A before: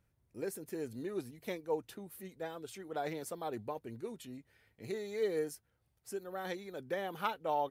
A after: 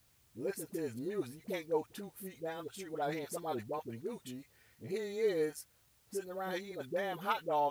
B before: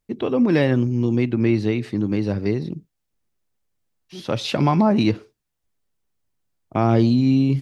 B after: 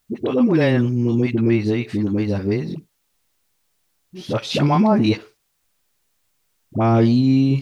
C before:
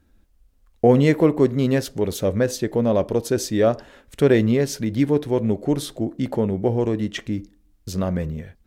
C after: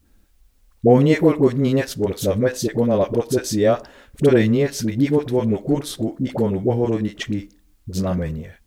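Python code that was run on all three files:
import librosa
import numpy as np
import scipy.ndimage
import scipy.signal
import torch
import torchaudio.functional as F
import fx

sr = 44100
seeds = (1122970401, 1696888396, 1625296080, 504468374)

y = fx.dispersion(x, sr, late='highs', ms=60.0, hz=600.0)
y = fx.quant_dither(y, sr, seeds[0], bits=12, dither='triangular')
y = F.gain(torch.from_numpy(y), 1.5).numpy()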